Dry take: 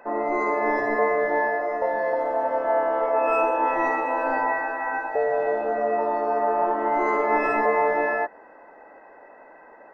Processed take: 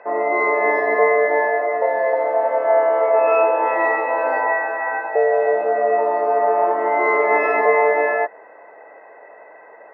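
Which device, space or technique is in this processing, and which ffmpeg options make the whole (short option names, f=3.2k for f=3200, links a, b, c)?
kitchen radio: -af "highpass=180,equalizer=f=250:t=q:w=4:g=-9,equalizer=f=450:t=q:w=4:g=7,equalizer=f=660:t=q:w=4:g=7,equalizer=f=1.1k:t=q:w=4:g=4,equalizer=f=2.1k:t=q:w=4:g=10,lowpass=f=4.6k:w=0.5412,lowpass=f=4.6k:w=1.3066"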